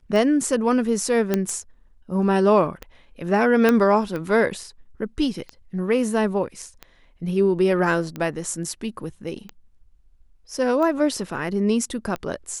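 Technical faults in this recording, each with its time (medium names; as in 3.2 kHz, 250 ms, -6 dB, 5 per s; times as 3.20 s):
tick 45 rpm
1.34 s: pop -7 dBFS
3.69 s: pop -6 dBFS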